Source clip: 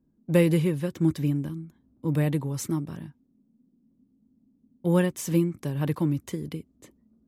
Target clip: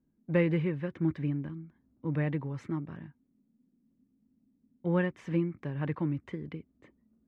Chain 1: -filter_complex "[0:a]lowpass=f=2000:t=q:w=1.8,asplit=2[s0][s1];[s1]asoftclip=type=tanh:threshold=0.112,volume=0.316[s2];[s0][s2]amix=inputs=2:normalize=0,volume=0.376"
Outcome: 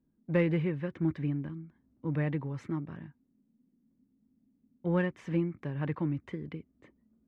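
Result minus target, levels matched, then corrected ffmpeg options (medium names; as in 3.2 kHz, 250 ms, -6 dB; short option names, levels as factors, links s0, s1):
saturation: distortion +15 dB
-filter_complex "[0:a]lowpass=f=2000:t=q:w=1.8,asplit=2[s0][s1];[s1]asoftclip=type=tanh:threshold=0.376,volume=0.316[s2];[s0][s2]amix=inputs=2:normalize=0,volume=0.376"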